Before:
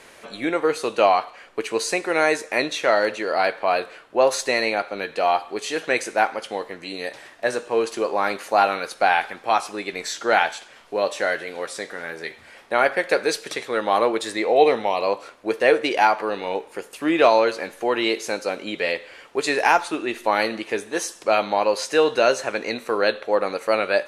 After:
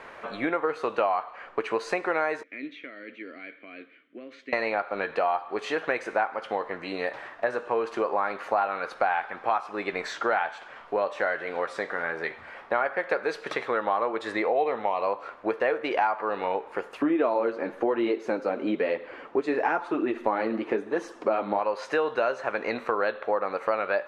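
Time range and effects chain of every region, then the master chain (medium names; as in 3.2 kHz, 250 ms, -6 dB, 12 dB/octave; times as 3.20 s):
2.43–4.53 s: compression 10:1, threshold -19 dBFS + vowel filter i
17.02–21.59 s: peaking EQ 280 Hz +13.5 dB 1.7 oct + flange 1 Hz, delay 0.2 ms, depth 9.4 ms, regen -34%
whole clip: FFT filter 330 Hz 0 dB, 1.2 kHz +8 dB, 9.9 kHz -20 dB; compression 4:1, threshold -24 dBFS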